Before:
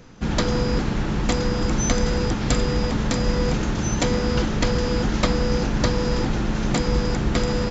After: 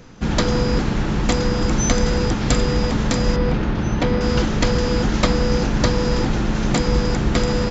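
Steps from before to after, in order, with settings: 3.36–4.21 s: distance through air 210 m; trim +3 dB

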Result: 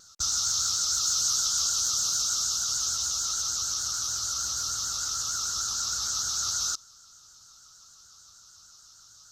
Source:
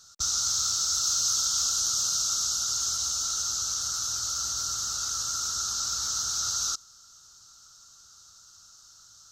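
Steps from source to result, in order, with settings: vibrato 6.6 Hz 80 cents

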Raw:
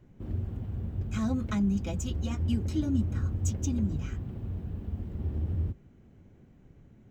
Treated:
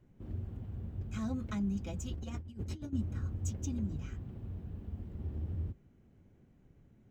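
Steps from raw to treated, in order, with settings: 2.11–2.93 s: compressor with a negative ratio -33 dBFS, ratio -0.5; trim -7 dB

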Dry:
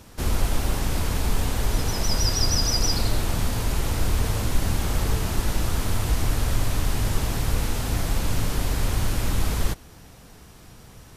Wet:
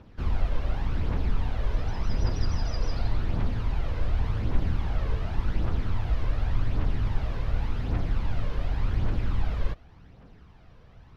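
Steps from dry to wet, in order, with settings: phaser 0.88 Hz, delay 2 ms, feedback 43%; distance through air 300 m; trim -6.5 dB

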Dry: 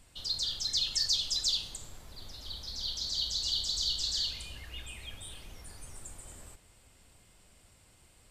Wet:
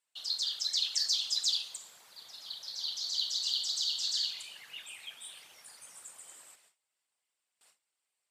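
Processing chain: whisper effect; Bessel high-pass 1 kHz, order 2; gate with hold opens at -53 dBFS

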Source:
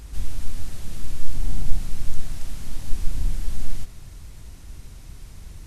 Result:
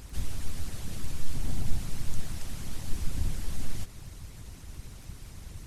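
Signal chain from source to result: harmonic-percussive split harmonic -13 dB; crackle 15 per s -45 dBFS; trim +3.5 dB

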